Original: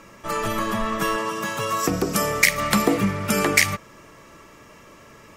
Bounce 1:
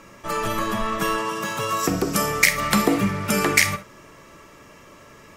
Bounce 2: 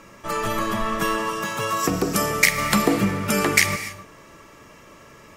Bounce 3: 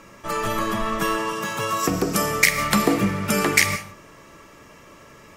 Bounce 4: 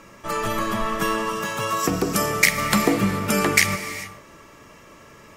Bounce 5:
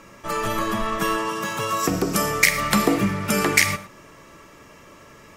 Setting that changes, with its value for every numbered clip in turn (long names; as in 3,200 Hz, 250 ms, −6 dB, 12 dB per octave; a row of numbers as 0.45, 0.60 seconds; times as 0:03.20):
reverb whose tail is shaped and stops, gate: 90, 310, 200, 460, 140 milliseconds